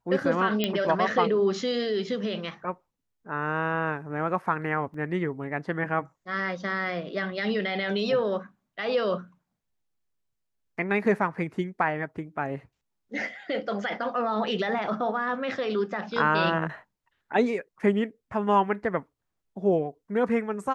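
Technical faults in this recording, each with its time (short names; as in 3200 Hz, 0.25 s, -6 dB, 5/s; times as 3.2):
0.64 pop -11 dBFS
4.94 gap 3.4 ms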